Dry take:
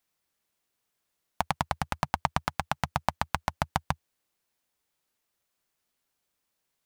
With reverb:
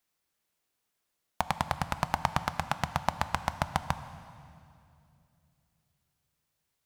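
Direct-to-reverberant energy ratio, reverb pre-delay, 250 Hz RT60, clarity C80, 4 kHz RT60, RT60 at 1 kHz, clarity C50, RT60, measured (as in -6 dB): 11.5 dB, 10 ms, 3.4 s, 13.0 dB, 2.3 s, 2.4 s, 12.5 dB, 2.7 s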